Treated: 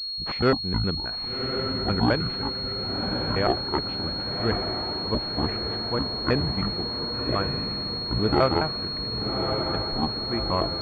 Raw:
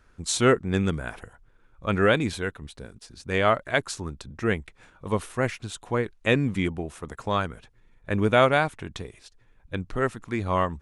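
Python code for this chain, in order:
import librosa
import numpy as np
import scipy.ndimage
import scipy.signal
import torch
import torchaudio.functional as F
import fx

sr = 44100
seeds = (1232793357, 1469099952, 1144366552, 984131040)

y = fx.pitch_trill(x, sr, semitones=-9.5, every_ms=105)
y = fx.echo_diffused(y, sr, ms=1134, feedback_pct=60, wet_db=-5.0)
y = fx.pwm(y, sr, carrier_hz=4300.0)
y = y * 10.0 ** (-1.5 / 20.0)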